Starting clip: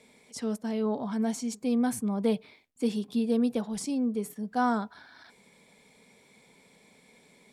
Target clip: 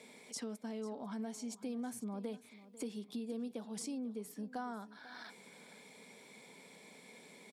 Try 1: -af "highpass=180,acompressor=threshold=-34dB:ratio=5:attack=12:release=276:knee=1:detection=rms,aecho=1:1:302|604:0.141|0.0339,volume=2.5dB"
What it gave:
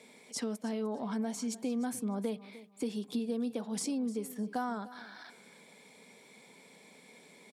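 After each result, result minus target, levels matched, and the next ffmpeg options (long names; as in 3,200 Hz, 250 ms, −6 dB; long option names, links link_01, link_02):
echo 193 ms early; downward compressor: peak gain reduction −7 dB
-af "highpass=180,acompressor=threshold=-34dB:ratio=5:attack=12:release=276:knee=1:detection=rms,aecho=1:1:495|990:0.141|0.0339,volume=2.5dB"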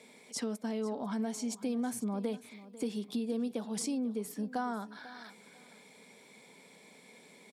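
downward compressor: peak gain reduction −7 dB
-af "highpass=180,acompressor=threshold=-43dB:ratio=5:attack=12:release=276:knee=1:detection=rms,aecho=1:1:495|990:0.141|0.0339,volume=2.5dB"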